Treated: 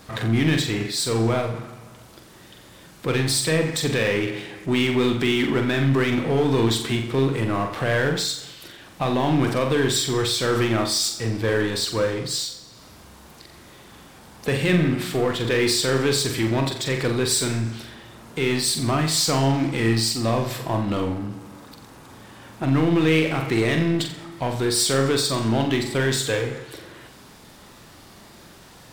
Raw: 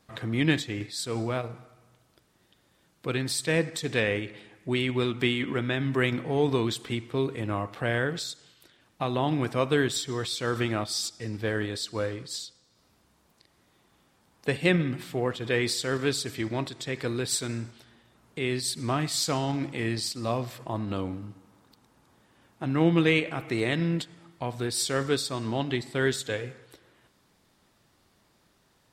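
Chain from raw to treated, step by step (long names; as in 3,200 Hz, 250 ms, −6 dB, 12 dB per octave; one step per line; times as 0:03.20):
brickwall limiter −17 dBFS, peak gain reduction 7 dB
power curve on the samples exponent 0.7
flutter between parallel walls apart 7.6 metres, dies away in 0.42 s
level +4 dB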